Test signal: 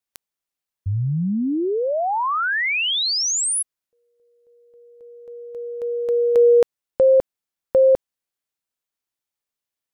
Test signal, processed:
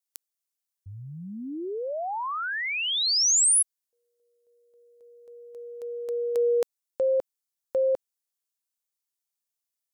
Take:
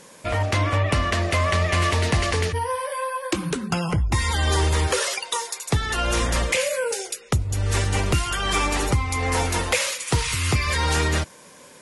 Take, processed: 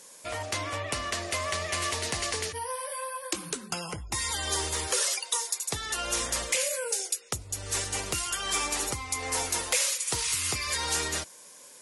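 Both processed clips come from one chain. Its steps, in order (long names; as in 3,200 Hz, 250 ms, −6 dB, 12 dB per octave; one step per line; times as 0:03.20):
bass and treble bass −10 dB, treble +11 dB
level −9 dB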